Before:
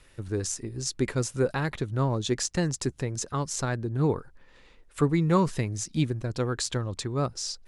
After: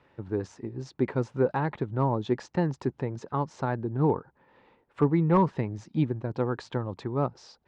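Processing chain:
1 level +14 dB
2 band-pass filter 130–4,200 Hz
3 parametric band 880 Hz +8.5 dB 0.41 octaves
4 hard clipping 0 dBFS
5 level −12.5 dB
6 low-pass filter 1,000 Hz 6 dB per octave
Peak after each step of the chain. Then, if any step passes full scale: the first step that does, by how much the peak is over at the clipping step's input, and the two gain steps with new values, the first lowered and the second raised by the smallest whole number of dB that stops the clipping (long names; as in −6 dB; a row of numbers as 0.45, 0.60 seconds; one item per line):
+4.0, +3.0, +5.5, 0.0, −12.5, −12.5 dBFS
step 1, 5.5 dB
step 1 +8 dB, step 5 −6.5 dB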